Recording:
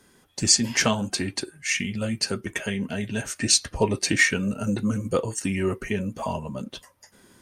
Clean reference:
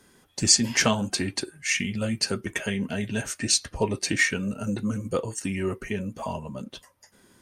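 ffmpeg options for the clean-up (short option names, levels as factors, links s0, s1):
-af "asetnsamples=n=441:p=0,asendcmd='3.36 volume volume -3dB',volume=1"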